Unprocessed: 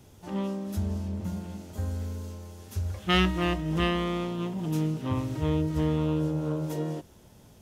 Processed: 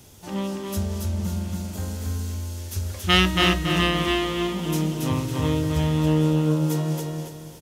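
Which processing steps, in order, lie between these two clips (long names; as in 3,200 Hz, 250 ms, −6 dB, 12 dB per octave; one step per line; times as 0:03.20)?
high-shelf EQ 2,500 Hz +9.5 dB
repeating echo 278 ms, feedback 35%, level −3 dB
level +2.5 dB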